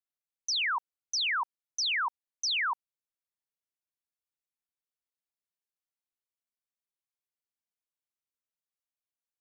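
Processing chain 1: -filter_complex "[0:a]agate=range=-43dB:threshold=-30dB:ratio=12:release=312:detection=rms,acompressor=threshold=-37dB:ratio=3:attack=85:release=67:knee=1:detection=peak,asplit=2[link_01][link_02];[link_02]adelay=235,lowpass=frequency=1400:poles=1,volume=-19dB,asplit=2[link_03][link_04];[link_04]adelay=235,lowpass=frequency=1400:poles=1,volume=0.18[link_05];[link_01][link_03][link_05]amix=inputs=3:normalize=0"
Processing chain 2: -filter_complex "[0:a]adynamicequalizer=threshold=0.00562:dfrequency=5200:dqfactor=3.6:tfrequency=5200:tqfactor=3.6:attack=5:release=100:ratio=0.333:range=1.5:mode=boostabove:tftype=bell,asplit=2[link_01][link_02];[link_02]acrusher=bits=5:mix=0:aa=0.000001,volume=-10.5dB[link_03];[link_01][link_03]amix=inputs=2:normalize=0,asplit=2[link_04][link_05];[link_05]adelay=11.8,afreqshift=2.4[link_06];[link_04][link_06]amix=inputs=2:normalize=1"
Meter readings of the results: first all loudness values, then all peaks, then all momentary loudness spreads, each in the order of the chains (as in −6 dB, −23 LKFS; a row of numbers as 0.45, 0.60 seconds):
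−34.0, −30.5 LKFS; −26.0, −21.5 dBFS; 9, 8 LU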